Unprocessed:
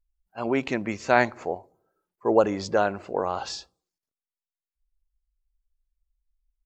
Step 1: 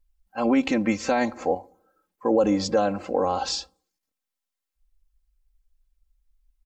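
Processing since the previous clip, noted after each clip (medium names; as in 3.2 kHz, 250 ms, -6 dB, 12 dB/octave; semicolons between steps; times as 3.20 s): comb 3.8 ms, depth 82%; dynamic bell 1.6 kHz, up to -8 dB, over -34 dBFS, Q 0.73; peak limiter -16 dBFS, peak gain reduction 9.5 dB; trim +4.5 dB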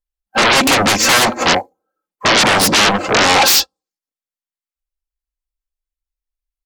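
sine folder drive 19 dB, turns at -11 dBFS; bass shelf 120 Hz -11.5 dB; upward expansion 2.5:1, over -38 dBFS; trim +4.5 dB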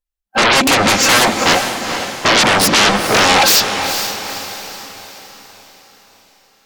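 echo that smears into a reverb 461 ms, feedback 47%, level -8 dB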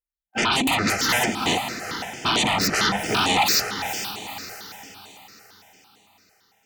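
comb of notches 550 Hz; stepped phaser 8.9 Hz 960–5100 Hz; trim -5.5 dB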